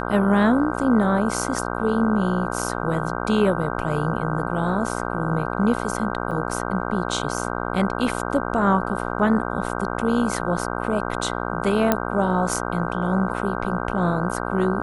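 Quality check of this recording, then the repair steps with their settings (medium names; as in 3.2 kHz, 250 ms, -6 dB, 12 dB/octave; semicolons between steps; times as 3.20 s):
buzz 60 Hz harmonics 26 -27 dBFS
6.31–6.32 s: dropout 5.1 ms
11.92 s: pop -4 dBFS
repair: de-click; de-hum 60 Hz, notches 26; interpolate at 6.31 s, 5.1 ms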